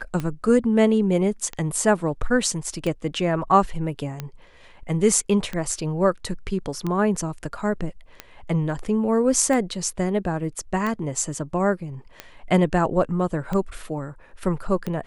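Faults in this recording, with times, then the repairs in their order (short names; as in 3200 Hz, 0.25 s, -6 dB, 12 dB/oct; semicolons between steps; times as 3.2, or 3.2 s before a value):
tick 45 rpm -15 dBFS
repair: de-click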